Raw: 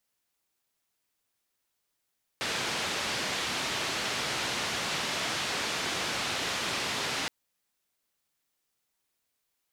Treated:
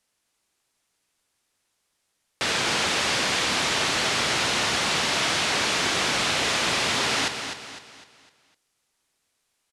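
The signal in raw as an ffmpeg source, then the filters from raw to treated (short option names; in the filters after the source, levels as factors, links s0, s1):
-f lavfi -i "anoisesrc=c=white:d=4.87:r=44100:seed=1,highpass=f=91,lowpass=f=4300,volume=-20.3dB"
-filter_complex "[0:a]lowpass=f=11000:w=0.5412,lowpass=f=11000:w=1.3066,acontrast=84,asplit=2[s0][s1];[s1]aecho=0:1:253|506|759|1012|1265:0.398|0.163|0.0669|0.0274|0.0112[s2];[s0][s2]amix=inputs=2:normalize=0"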